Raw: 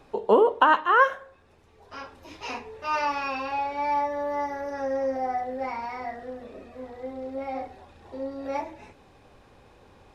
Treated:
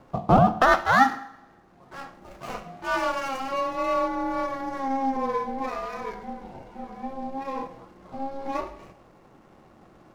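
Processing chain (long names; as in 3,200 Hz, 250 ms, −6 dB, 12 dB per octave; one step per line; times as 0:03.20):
running median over 15 samples
ring modulation 270 Hz
coupled-rooms reverb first 0.71 s, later 1.8 s, from −18 dB, DRR 12 dB
level +4 dB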